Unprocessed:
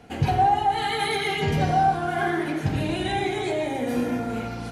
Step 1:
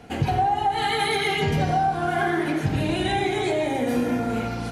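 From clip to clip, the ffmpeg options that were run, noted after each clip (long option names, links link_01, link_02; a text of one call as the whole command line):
ffmpeg -i in.wav -af "acompressor=threshold=-22dB:ratio=6,volume=3.5dB" out.wav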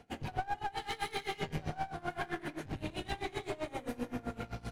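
ffmpeg -i in.wav -af "asubboost=boost=3:cutoff=96,aeval=exprs='clip(val(0),-1,0.0398)':channel_layout=same,aeval=exprs='val(0)*pow(10,-21*(0.5-0.5*cos(2*PI*7.7*n/s))/20)':channel_layout=same,volume=-8dB" out.wav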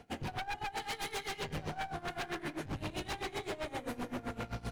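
ffmpeg -i in.wav -af "aeval=exprs='0.02*(abs(mod(val(0)/0.02+3,4)-2)-1)':channel_layout=same,volume=2.5dB" out.wav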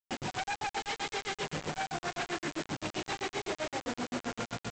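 ffmpeg -i in.wav -af "highpass=140,lowpass=4600,aresample=16000,acrusher=bits=6:mix=0:aa=0.000001,aresample=44100,volume=3.5dB" out.wav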